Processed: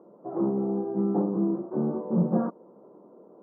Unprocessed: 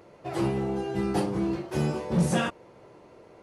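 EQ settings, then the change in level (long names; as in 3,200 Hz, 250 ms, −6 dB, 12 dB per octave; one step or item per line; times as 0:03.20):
elliptic band-pass filter 200–1,200 Hz, stop band 40 dB
spectral tilt −4 dB per octave
−4.0 dB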